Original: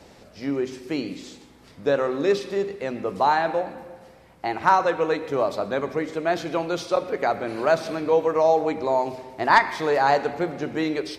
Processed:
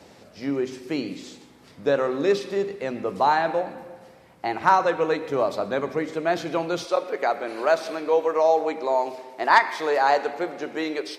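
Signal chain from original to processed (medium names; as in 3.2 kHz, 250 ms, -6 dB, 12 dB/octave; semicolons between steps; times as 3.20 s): high-pass 93 Hz 12 dB/octave, from 6.85 s 350 Hz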